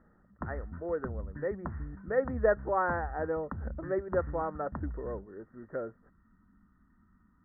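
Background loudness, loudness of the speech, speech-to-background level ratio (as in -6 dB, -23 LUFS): -43.0 LUFS, -34.5 LUFS, 8.5 dB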